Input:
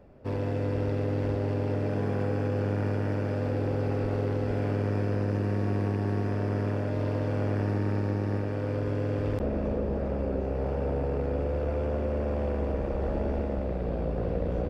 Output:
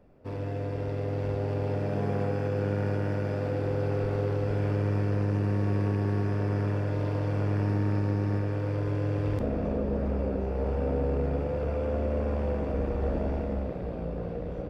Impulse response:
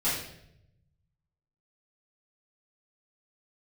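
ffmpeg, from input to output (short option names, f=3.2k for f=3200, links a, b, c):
-filter_complex "[0:a]dynaudnorm=f=220:g=11:m=4dB,asplit=2[a][b];[1:a]atrim=start_sample=2205[c];[b][c]afir=irnorm=-1:irlink=0,volume=-17dB[d];[a][d]amix=inputs=2:normalize=0,volume=-5.5dB"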